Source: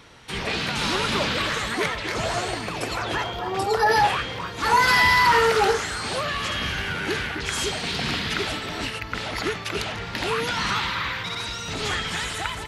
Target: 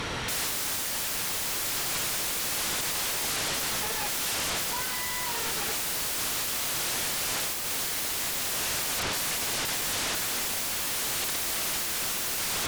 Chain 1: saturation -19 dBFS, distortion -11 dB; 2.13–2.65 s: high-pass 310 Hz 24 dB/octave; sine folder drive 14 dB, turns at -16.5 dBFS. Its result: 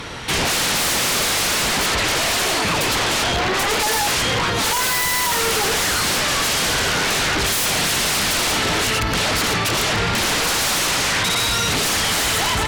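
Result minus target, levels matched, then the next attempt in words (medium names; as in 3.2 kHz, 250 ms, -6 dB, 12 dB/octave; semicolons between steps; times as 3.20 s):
sine folder: distortion -10 dB
saturation -19 dBFS, distortion -11 dB; 2.13–2.65 s: high-pass 310 Hz 24 dB/octave; sine folder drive 14 dB, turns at -26.5 dBFS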